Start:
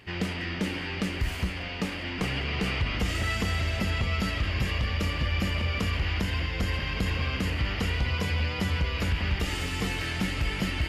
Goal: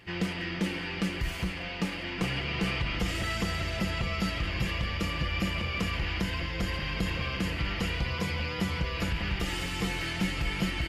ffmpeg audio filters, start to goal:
ffmpeg -i in.wav -af "aecho=1:1:5.9:0.45,volume=-2dB" out.wav

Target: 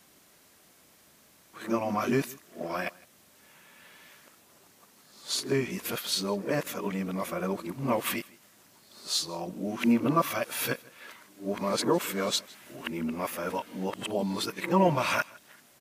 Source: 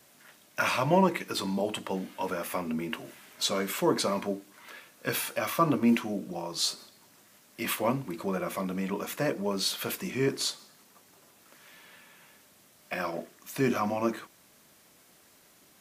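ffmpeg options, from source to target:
ffmpeg -i in.wav -af "areverse,equalizer=frequency=75:width=6.8:gain=6.5,aecho=1:1:158:0.0668" out.wav

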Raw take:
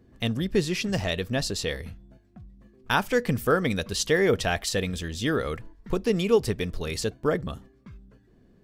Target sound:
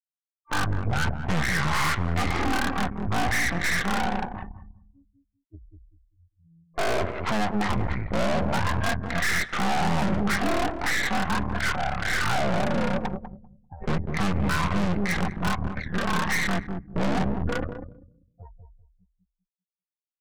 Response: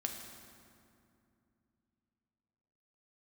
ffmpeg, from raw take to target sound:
-filter_complex "[0:a]aemphasis=mode=production:type=riaa,bandreject=frequency=159.9:width_type=h:width=4,bandreject=frequency=319.8:width_type=h:width=4,bandreject=frequency=479.7:width_type=h:width=4,afftfilt=real='re*gte(hypot(re,im),0.00794)':imag='im*gte(hypot(re,im),0.00794)':win_size=1024:overlap=0.75,equalizer=frequency=1600:width_type=o:width=0.51:gain=4.5,acrossover=split=200[link_01][link_02];[link_02]acompressor=threshold=-22dB:ratio=6[link_03];[link_01][link_03]amix=inputs=2:normalize=0,aresample=11025,aresample=44100,asoftclip=type=hard:threshold=-32.5dB,asplit=2[link_04][link_05];[link_05]adelay=84,lowpass=frequency=830:poles=1,volume=-3.5dB,asplit=2[link_06][link_07];[link_07]adelay=84,lowpass=frequency=830:poles=1,volume=0.31,asplit=2[link_08][link_09];[link_09]adelay=84,lowpass=frequency=830:poles=1,volume=0.31,asplit=2[link_10][link_11];[link_11]adelay=84,lowpass=frequency=830:poles=1,volume=0.31[link_12];[link_06][link_08][link_10][link_12]amix=inputs=4:normalize=0[link_13];[link_04][link_13]amix=inputs=2:normalize=0,asetrate=18846,aresample=44100,aeval=exprs='0.0531*(cos(1*acos(clip(val(0)/0.0531,-1,1)))-cos(1*PI/2))+0.0119*(cos(6*acos(clip(val(0)/0.0531,-1,1)))-cos(6*PI/2))':channel_layout=same,volume=8.5dB"

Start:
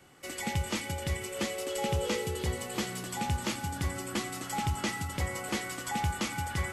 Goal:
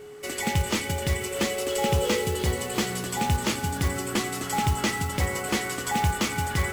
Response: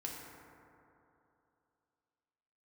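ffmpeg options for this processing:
-filter_complex "[0:a]acrusher=bits=4:mode=log:mix=0:aa=0.000001,aeval=exprs='val(0)+0.00447*sin(2*PI*420*n/s)':channel_layout=same,asplit=2[link_01][link_02];[1:a]atrim=start_sample=2205,asetrate=24696,aresample=44100[link_03];[link_02][link_03]afir=irnorm=-1:irlink=0,volume=-21.5dB[link_04];[link_01][link_04]amix=inputs=2:normalize=0,volume=6dB"

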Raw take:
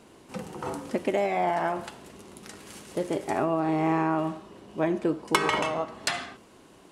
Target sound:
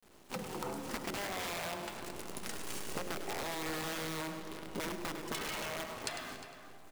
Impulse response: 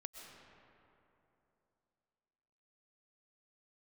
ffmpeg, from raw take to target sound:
-filter_complex "[0:a]agate=range=-33dB:threshold=-45dB:ratio=3:detection=peak,bandreject=frequency=50:width_type=h:width=6,bandreject=frequency=100:width_type=h:width=6,bandreject=frequency=150:width_type=h:width=6,bandreject=frequency=200:width_type=h:width=6,bandreject=frequency=250:width_type=h:width=6,bandreject=frequency=300:width_type=h:width=6,bandreject=frequency=350:width_type=h:width=6,acrossover=split=160|2300[link_01][link_02][link_03];[link_02]aeval=exprs='(mod(13.3*val(0)+1,2)-1)/13.3':channel_layout=same[link_04];[link_01][link_04][link_03]amix=inputs=3:normalize=0,acontrast=42,acrusher=bits=7:dc=4:mix=0:aa=0.000001,acompressor=threshold=-36dB:ratio=16,asplit=2[link_05][link_06];[link_06]adelay=355.7,volume=-11dB,highshelf=frequency=4000:gain=-8[link_07];[link_05][link_07]amix=inputs=2:normalize=0,asplit=2[link_08][link_09];[1:a]atrim=start_sample=2205,adelay=101[link_10];[link_09][link_10]afir=irnorm=-1:irlink=0,volume=-4dB[link_11];[link_08][link_11]amix=inputs=2:normalize=0,volume=-1dB"

